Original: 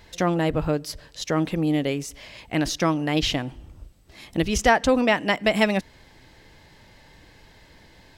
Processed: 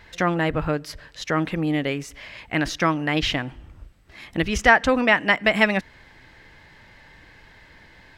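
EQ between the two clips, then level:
low-shelf EQ 420 Hz +6.5 dB
parametric band 1,700 Hz +13 dB 2 octaves
−6.5 dB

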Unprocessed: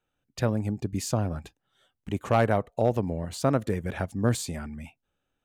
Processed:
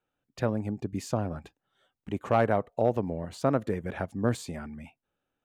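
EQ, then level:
low-shelf EQ 110 Hz −10 dB
high-shelf EQ 3,300 Hz −10.5 dB
0.0 dB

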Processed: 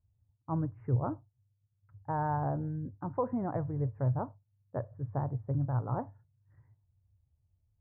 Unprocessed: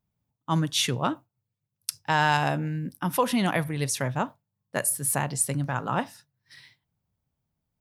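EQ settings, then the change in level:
Gaussian smoothing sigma 9 samples
low shelf with overshoot 130 Hz +10.5 dB, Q 3
−3.5 dB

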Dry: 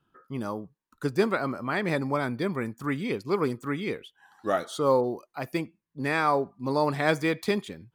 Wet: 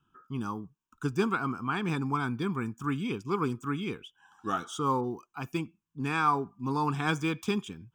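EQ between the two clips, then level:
phaser with its sweep stopped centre 2,900 Hz, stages 8
+1.0 dB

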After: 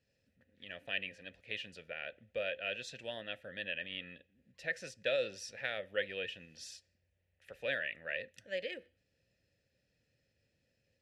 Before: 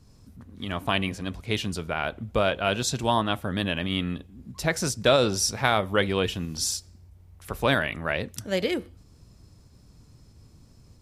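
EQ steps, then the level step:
parametric band 430 Hz −13.5 dB 2 octaves
dynamic equaliser 870 Hz, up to −6 dB, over −49 dBFS, Q 3.9
formant filter e
+4.0 dB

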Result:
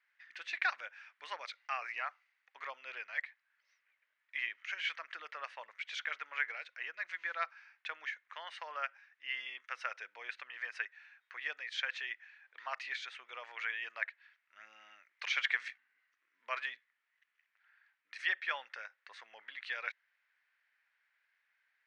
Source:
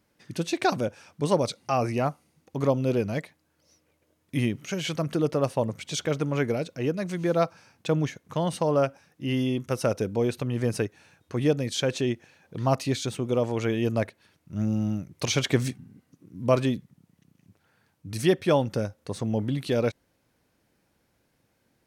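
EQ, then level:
four-pole ladder high-pass 1,600 Hz, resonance 55%
head-to-tape spacing loss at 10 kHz 40 dB
+13.0 dB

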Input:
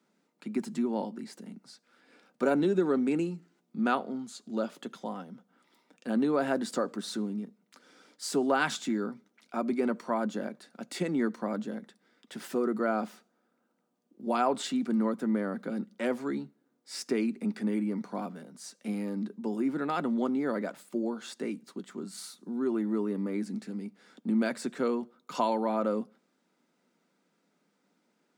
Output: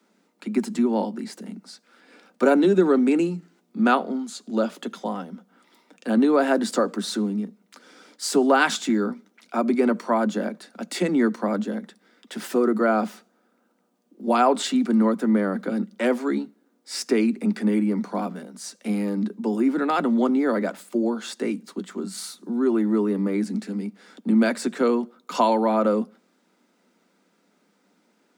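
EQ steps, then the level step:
Butterworth high-pass 170 Hz 96 dB per octave
+8.5 dB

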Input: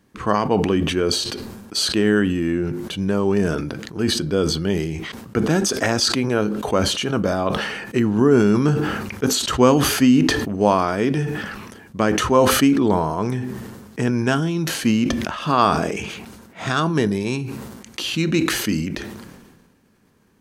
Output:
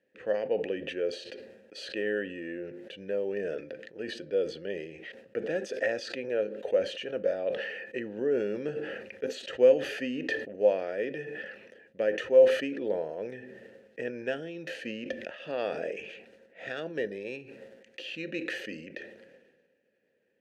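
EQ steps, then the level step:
formant filter e
0.0 dB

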